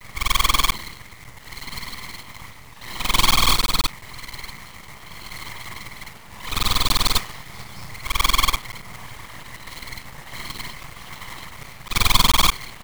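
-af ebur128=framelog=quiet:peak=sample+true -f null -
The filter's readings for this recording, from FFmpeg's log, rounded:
Integrated loudness:
  I:         -20.6 LUFS
  Threshold: -34.0 LUFS
Loudness range:
  LRA:         6.2 LU
  Threshold: -44.8 LUFS
  LRA low:   -29.4 LUFS
  LRA high:  -23.2 LUFS
Sample peak:
  Peak:       -2.4 dBFS
True peak:
  Peak:       -1.4 dBFS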